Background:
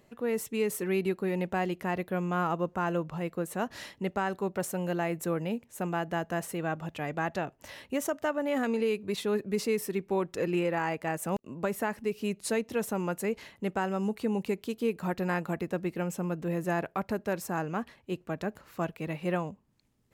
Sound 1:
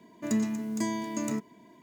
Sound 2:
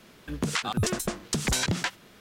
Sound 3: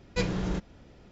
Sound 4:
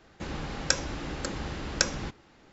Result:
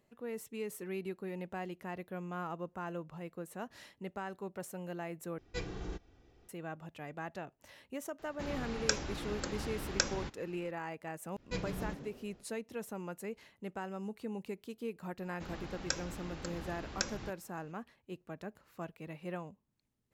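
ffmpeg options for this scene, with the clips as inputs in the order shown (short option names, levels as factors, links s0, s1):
-filter_complex "[3:a]asplit=2[s0][s1];[4:a]asplit=2[s2][s3];[0:a]volume=0.282[s4];[s0]aecho=1:1:2.6:0.53[s5];[s2]acompressor=mode=upward:threshold=0.00398:ratio=2.5:attack=3.2:release=140:knee=2.83:detection=peak[s6];[s1]asplit=5[s7][s8][s9][s10][s11];[s8]adelay=140,afreqshift=99,volume=0.316[s12];[s9]adelay=280,afreqshift=198,volume=0.126[s13];[s10]adelay=420,afreqshift=297,volume=0.0507[s14];[s11]adelay=560,afreqshift=396,volume=0.0202[s15];[s7][s12][s13][s14][s15]amix=inputs=5:normalize=0[s16];[s4]asplit=2[s17][s18];[s17]atrim=end=5.384[s19];[s5]atrim=end=1.11,asetpts=PTS-STARTPTS,volume=0.266[s20];[s18]atrim=start=6.486[s21];[s6]atrim=end=2.52,asetpts=PTS-STARTPTS,volume=0.531,afade=t=in:d=0.004:c=hsin,afade=t=out:st=2.516:d=0.004:c=hsin,adelay=8190[s22];[s16]atrim=end=1.11,asetpts=PTS-STARTPTS,volume=0.316,afade=t=in:d=0.05,afade=t=out:st=1.06:d=0.05,adelay=11350[s23];[s3]atrim=end=2.52,asetpts=PTS-STARTPTS,volume=0.316,afade=t=in:d=0.004:c=hsin,afade=t=out:st=2.516:d=0.004:c=hsin,adelay=15200[s24];[s19][s20]acrossfade=d=0.004:c1=hsin:c2=hsin[s25];[s25][s21]acrossfade=d=0.004:c1=hsin:c2=hsin[s26];[s26][s22][s23][s24]amix=inputs=4:normalize=0"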